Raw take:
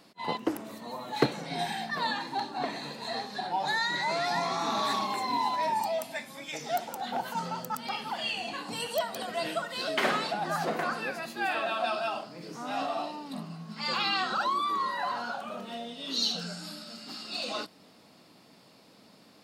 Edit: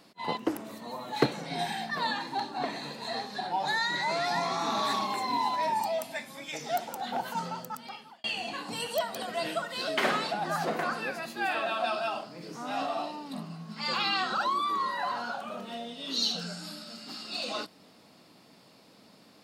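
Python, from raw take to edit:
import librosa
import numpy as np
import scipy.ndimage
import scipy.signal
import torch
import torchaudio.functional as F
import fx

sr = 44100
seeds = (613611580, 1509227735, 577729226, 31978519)

y = fx.edit(x, sr, fx.fade_out_span(start_s=7.38, length_s=0.86), tone=tone)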